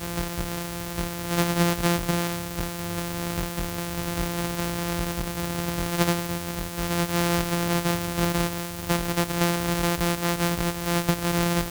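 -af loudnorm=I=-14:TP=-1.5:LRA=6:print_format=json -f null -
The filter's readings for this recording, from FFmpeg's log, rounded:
"input_i" : "-25.9",
"input_tp" : "-5.6",
"input_lra" : "3.9",
"input_thresh" : "-35.9",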